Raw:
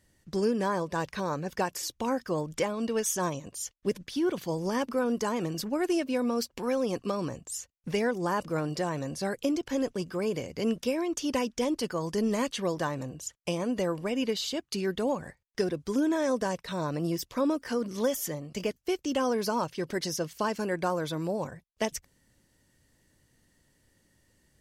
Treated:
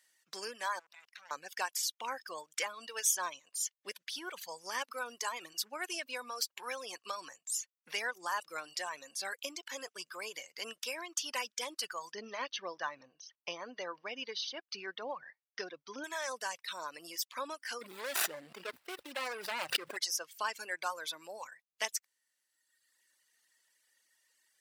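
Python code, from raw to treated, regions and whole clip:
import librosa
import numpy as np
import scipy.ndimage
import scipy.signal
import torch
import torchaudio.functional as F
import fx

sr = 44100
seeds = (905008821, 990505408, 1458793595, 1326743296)

y = fx.chain(x, sr, fx.level_steps(step_db=20),
    fx.peak_eq(hz=490.0, db=-4.0, octaves=0.39),
    fx.transformer_sat(knee_hz=1600.0), at=(0.79, 1.31))
y = fx.chain(y, sr, fx.brickwall_lowpass(high_hz=6400.0),
    fx.tilt_eq(slope=-2.5), at=(12.12, 16.04))
y = fx.chain(y, sr, fx.median_filter(points=41),
    fx.peak_eq(hz=6400.0, db=-7.0, octaves=0.3),
    fx.env_flatten(amount_pct=100), at=(17.81, 19.97))
y = fx.dereverb_blind(y, sr, rt60_s=1.4)
y = scipy.signal.sosfilt(scipy.signal.butter(2, 1300.0, 'highpass', fs=sr, output='sos'), y)
y = y * 10.0 ** (1.5 / 20.0)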